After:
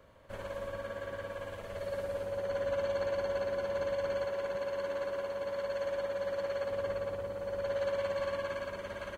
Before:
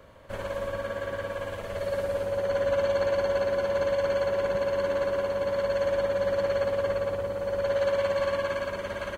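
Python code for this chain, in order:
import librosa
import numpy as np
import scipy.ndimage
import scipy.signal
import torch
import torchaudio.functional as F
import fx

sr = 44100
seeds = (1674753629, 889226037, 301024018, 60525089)

y = fx.low_shelf(x, sr, hz=230.0, db=-7.5, at=(4.25, 6.7))
y = y * librosa.db_to_amplitude(-7.5)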